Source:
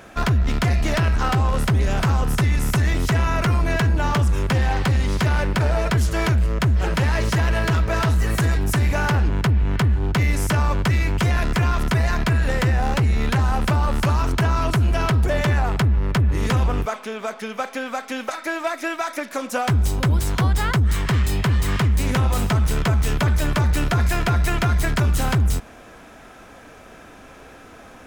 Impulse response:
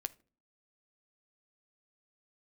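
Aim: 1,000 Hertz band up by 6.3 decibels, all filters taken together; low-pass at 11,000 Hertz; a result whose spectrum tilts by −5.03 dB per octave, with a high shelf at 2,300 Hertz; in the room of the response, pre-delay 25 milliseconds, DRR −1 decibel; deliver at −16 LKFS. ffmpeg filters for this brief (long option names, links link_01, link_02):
-filter_complex "[0:a]lowpass=11000,equalizer=frequency=1000:width_type=o:gain=7,highshelf=frequency=2300:gain=5,asplit=2[link_01][link_02];[1:a]atrim=start_sample=2205,adelay=25[link_03];[link_02][link_03]afir=irnorm=-1:irlink=0,volume=2.5dB[link_04];[link_01][link_04]amix=inputs=2:normalize=0"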